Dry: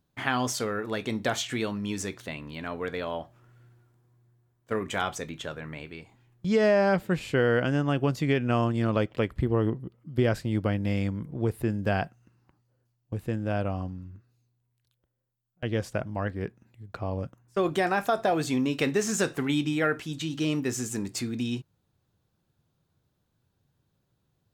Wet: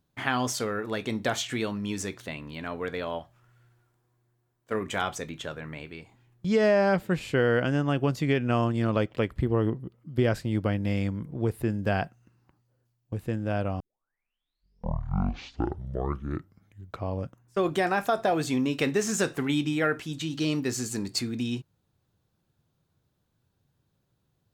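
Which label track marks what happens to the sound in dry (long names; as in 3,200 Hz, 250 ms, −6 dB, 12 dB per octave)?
3.180000	4.730000	parametric band 400 Hz → 62 Hz −8.5 dB 2.4 octaves
13.800000	13.800000	tape start 3.33 s
20.370000	21.190000	parametric band 4,400 Hz +12.5 dB 0.2 octaves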